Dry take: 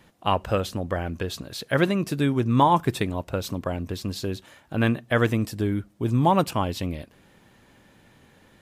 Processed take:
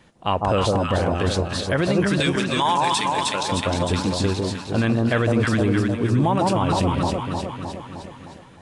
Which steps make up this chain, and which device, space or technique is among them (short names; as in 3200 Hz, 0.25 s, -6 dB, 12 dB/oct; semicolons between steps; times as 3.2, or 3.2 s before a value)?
2.2–3.43 weighting filter ITU-R 468; echo with dull and thin repeats by turns 0.154 s, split 1000 Hz, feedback 76%, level -3 dB; low-bitrate web radio (AGC gain up to 4.5 dB; limiter -12.5 dBFS, peak gain reduction 9.5 dB; gain +2 dB; AAC 48 kbps 22050 Hz)